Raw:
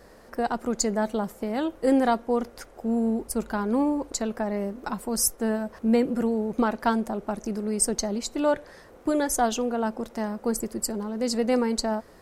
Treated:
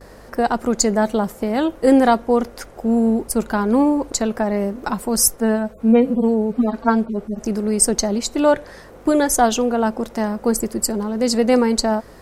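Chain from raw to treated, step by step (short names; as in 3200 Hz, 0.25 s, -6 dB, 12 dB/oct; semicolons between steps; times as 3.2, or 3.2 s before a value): 5.4–7.43 median-filter separation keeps harmonic; gate with hold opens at -46 dBFS; hum 50 Hz, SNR 31 dB; gain +8 dB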